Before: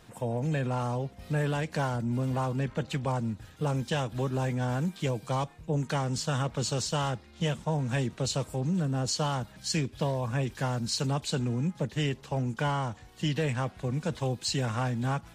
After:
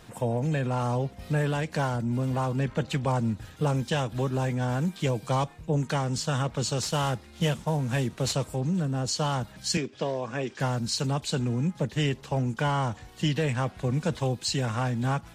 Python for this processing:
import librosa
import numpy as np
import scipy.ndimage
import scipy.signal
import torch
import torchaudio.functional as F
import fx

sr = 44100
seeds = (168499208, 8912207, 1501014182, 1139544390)

y = fx.cvsd(x, sr, bps=64000, at=(6.82, 8.33))
y = fx.rider(y, sr, range_db=10, speed_s=0.5)
y = fx.cabinet(y, sr, low_hz=240.0, low_slope=12, high_hz=6900.0, hz=(390.0, 930.0, 4000.0), db=(3, -4, -4), at=(9.77, 10.6))
y = y * 10.0 ** (2.5 / 20.0)